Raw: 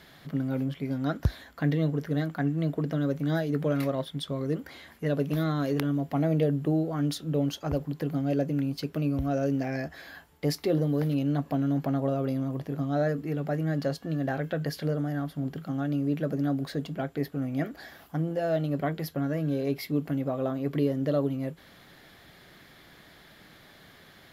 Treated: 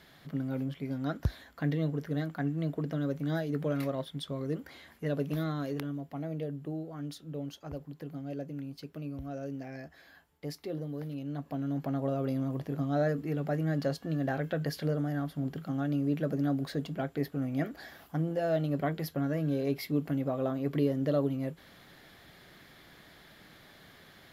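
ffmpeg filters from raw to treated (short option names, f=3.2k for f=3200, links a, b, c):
-af "volume=5dB,afade=t=out:st=5.32:d=0.8:silence=0.446684,afade=t=in:st=11.22:d=1.23:silence=0.334965"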